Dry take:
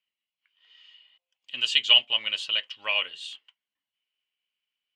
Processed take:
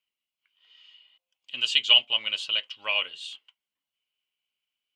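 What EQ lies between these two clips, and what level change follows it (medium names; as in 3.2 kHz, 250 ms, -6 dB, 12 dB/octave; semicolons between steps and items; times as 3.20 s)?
peaking EQ 1.8 kHz -7.5 dB 0.21 oct; 0.0 dB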